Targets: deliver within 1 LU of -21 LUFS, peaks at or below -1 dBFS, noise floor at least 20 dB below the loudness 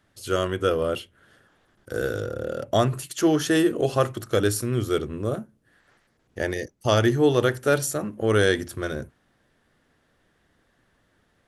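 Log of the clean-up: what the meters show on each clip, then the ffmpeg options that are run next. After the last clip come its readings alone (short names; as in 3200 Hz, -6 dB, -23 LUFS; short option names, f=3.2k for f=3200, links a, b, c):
loudness -24.5 LUFS; peak -6.5 dBFS; loudness target -21.0 LUFS
-> -af "volume=3.5dB"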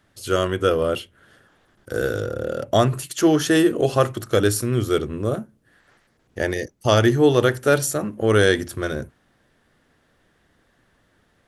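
loudness -21.0 LUFS; peak -3.0 dBFS; noise floor -64 dBFS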